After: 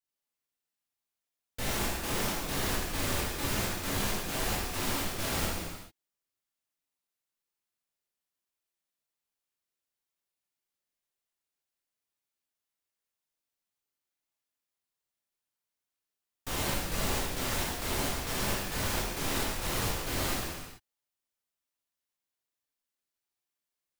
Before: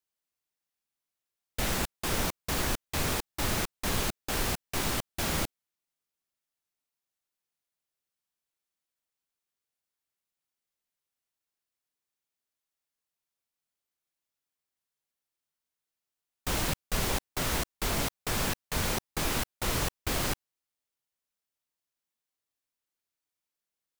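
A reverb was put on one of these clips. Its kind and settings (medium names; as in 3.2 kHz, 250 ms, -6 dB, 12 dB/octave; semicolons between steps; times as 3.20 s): gated-style reverb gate 470 ms falling, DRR -6 dB; trim -7.5 dB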